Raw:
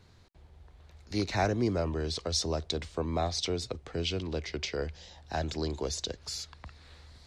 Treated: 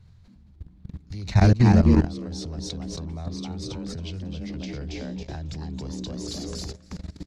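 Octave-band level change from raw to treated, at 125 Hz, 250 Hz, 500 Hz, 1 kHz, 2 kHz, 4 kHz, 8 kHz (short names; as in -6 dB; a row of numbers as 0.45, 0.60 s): +13.0, +11.0, 0.0, +2.0, +2.0, -3.0, -2.0 dB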